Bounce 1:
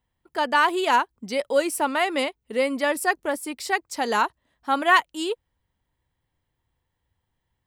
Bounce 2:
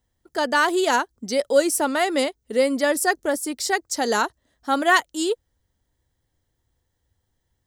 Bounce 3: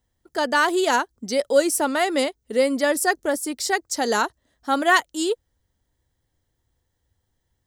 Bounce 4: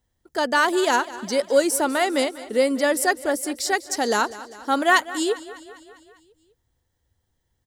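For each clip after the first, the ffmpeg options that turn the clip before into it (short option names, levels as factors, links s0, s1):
-af "equalizer=f=160:t=o:w=0.67:g=-5,equalizer=f=1000:t=o:w=0.67:g=-8,equalizer=f=2500:t=o:w=0.67:g=-9,equalizer=f=6300:t=o:w=0.67:g=6,volume=1.78"
-af anull
-af "aecho=1:1:200|400|600|800|1000|1200:0.141|0.0833|0.0492|0.029|0.0171|0.0101"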